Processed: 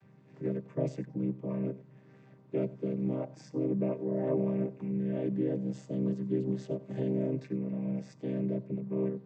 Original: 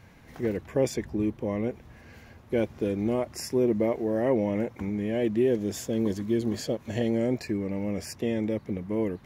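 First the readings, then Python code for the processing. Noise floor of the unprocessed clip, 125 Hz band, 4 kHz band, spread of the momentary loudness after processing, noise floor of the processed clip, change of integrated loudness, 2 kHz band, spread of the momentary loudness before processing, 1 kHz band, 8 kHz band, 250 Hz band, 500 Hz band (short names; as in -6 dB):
-52 dBFS, -1.0 dB, under -15 dB, 6 LU, -58 dBFS, -5.0 dB, under -10 dB, 6 LU, -11.0 dB, under -20 dB, -4.5 dB, -7.0 dB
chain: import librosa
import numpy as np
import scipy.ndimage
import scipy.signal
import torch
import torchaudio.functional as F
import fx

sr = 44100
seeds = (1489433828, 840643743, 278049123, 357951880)

y = fx.chord_vocoder(x, sr, chord='minor triad', root=48)
y = y + 10.0 ** (-19.5 / 20.0) * np.pad(y, (int(92 * sr / 1000.0), 0))[:len(y)]
y = y * 10.0 ** (-4.5 / 20.0)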